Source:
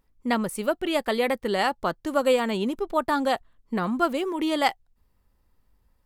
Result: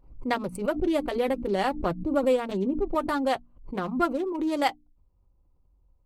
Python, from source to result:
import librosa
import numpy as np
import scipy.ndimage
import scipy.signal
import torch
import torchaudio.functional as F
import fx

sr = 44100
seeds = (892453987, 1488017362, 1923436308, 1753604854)

y = fx.wiener(x, sr, points=25)
y = fx.low_shelf(y, sr, hz=480.0, db=9.5, at=(0.78, 2.95))
y = fx.rider(y, sr, range_db=3, speed_s=0.5)
y = fx.low_shelf(y, sr, hz=70.0, db=8.0)
y = fx.hum_notches(y, sr, base_hz=60, count=5)
y = fx.notch_comb(y, sr, f0_hz=220.0)
y = fx.pre_swell(y, sr, db_per_s=110.0)
y = y * 10.0 ** (-3.0 / 20.0)